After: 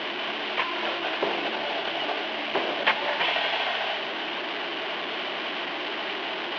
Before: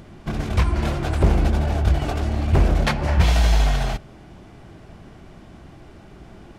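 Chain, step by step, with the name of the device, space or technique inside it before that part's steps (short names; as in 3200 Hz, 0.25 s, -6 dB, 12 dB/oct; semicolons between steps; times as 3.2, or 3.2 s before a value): digital answering machine (BPF 310–3000 Hz; delta modulation 32 kbps, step -25.5 dBFS; speaker cabinet 480–3600 Hz, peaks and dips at 510 Hz -5 dB, 760 Hz -4 dB, 1300 Hz -6 dB, 3000 Hz +7 dB); gain +4 dB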